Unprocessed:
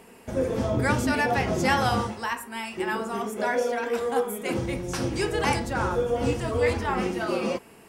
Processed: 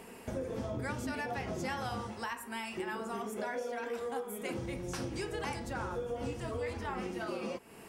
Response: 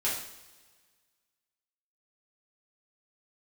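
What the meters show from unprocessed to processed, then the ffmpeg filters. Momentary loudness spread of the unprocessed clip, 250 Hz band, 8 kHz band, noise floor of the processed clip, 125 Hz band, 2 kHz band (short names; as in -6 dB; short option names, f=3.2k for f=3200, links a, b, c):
7 LU, -11.5 dB, -10.5 dB, -51 dBFS, -12.0 dB, -12.0 dB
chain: -af "acompressor=threshold=-37dB:ratio=4"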